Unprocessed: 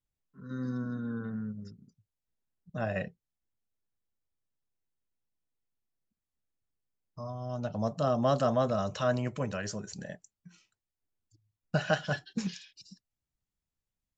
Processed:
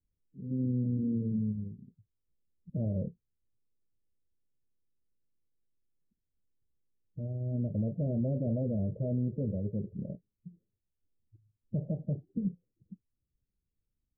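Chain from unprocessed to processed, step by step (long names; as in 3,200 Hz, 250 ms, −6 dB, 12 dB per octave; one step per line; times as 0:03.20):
spectral magnitudes quantised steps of 15 dB
Butterworth low-pass 540 Hz 48 dB per octave
brickwall limiter −29 dBFS, peak gain reduction 10 dB
low-shelf EQ 390 Hz +7 dB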